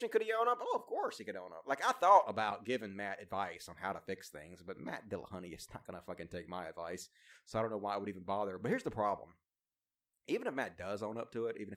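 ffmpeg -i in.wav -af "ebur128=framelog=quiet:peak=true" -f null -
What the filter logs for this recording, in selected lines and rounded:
Integrated loudness:
  I:         -37.3 LUFS
  Threshold: -47.9 LUFS
Loudness range:
  LRA:        11.6 LU
  Threshold: -58.7 LUFS
  LRA low:   -45.8 LUFS
  LRA high:  -34.2 LUFS
True peak:
  Peak:      -13.0 dBFS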